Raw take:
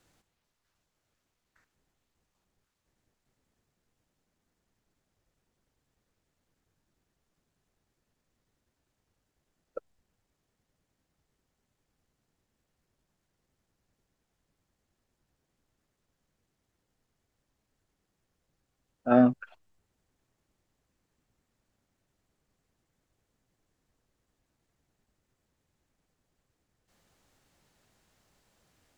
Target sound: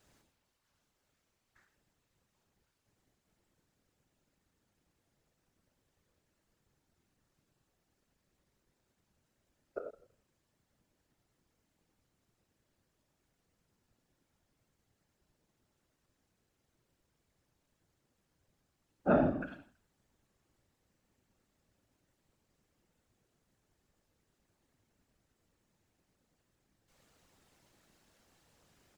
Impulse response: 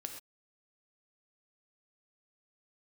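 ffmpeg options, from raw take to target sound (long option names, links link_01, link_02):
-filter_complex "[0:a]aecho=1:1:164|328:0.0841|0.0126,acompressor=threshold=-24dB:ratio=10[link_01];[1:a]atrim=start_sample=2205,afade=type=out:start_time=0.17:duration=0.01,atrim=end_sample=7938[link_02];[link_01][link_02]afir=irnorm=-1:irlink=0,afftfilt=real='hypot(re,im)*cos(2*PI*random(0))':imag='hypot(re,im)*sin(2*PI*random(1))':win_size=512:overlap=0.75,volume=9dB"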